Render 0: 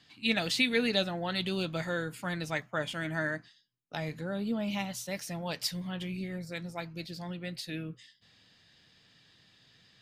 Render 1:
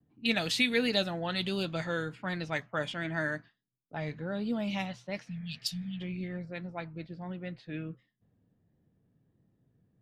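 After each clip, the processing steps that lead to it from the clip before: level-controlled noise filter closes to 360 Hz, open at -28 dBFS; spectral replace 5.30–5.98 s, 270–2500 Hz before; vibrato 1.4 Hz 48 cents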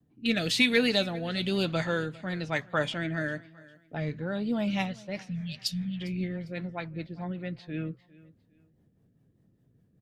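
in parallel at -7.5 dB: saturation -21 dBFS, distortion -17 dB; on the sum: rotary cabinet horn 1 Hz, later 5 Hz, at 3.84 s; feedback delay 402 ms, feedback 30%, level -21.5 dB; trim +2.5 dB

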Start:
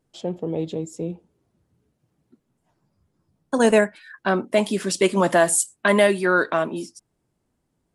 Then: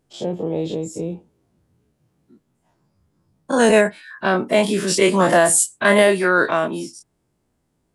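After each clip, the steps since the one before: every event in the spectrogram widened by 60 ms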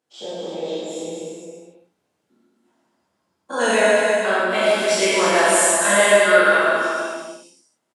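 frequency weighting A; on a send: bouncing-ball echo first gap 200 ms, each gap 0.75×, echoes 5; on the sum: gated-style reverb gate 170 ms flat, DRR -6.5 dB; trim -7.5 dB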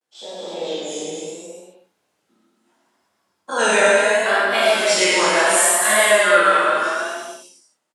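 bass shelf 480 Hz -9.5 dB; level rider gain up to 5.5 dB; vibrato 0.72 Hz 94 cents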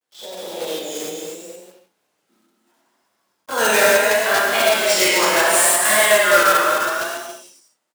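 block-companded coder 3-bit; high-pass 160 Hz 6 dB/octave

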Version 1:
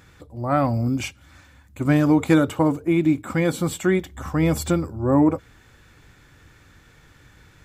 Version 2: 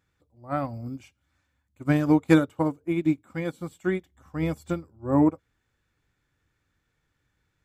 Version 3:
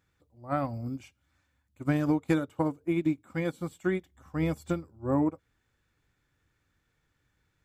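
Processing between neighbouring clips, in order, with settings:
upward expansion 2.5:1, over -28 dBFS
compression 4:1, threshold -23 dBFS, peak gain reduction 10 dB

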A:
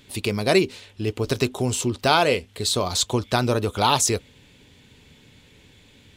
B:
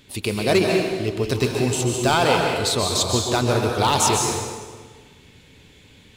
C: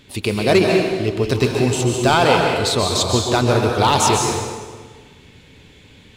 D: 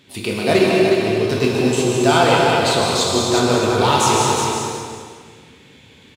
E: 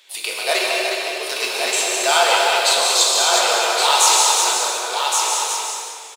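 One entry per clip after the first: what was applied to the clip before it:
hard clipper -11.5 dBFS, distortion -17 dB; plate-style reverb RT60 1.5 s, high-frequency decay 0.8×, pre-delay 120 ms, DRR 0.5 dB
treble shelf 6.8 kHz -7 dB; trim +4 dB
high-pass 110 Hz; on a send: feedback delay 363 ms, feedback 17%, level -6 dB; on the sum: plate-style reverb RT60 1.1 s, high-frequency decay 0.85×, DRR 0 dB; trim -3 dB
high-pass 570 Hz 24 dB/octave; treble shelf 3.4 kHz +10 dB; on a send: delay 1120 ms -4.5 dB; on the sum: trim -1.5 dB

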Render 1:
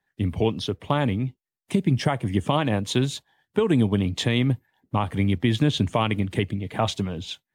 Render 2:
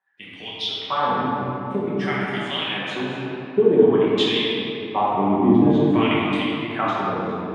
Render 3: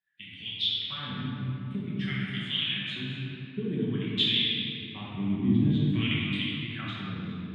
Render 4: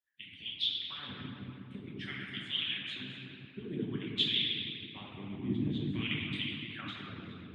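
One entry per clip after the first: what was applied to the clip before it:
LFO band-pass sine 0.51 Hz 310–3800 Hz; simulated room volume 160 m³, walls hard, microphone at 1.1 m; trim +4 dB
FFT filter 140 Hz 0 dB, 240 Hz -8 dB, 460 Hz -24 dB, 850 Hz -30 dB, 1.6 kHz -11 dB, 3.6 kHz 0 dB, 5.7 kHz -16 dB, 8.2 kHz -10 dB
harmonic-percussive split harmonic -18 dB

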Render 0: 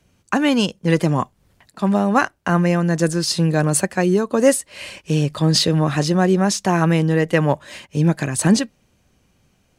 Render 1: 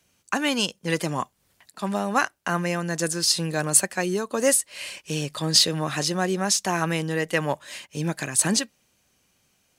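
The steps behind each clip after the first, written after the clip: tilt EQ +2.5 dB/octave; trim -5 dB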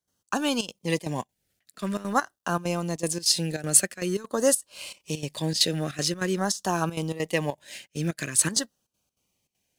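companding laws mixed up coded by A; LFO notch saw down 0.47 Hz 710–2600 Hz; trance gate ".xx.xxxx.xxxx" 198 bpm -12 dB

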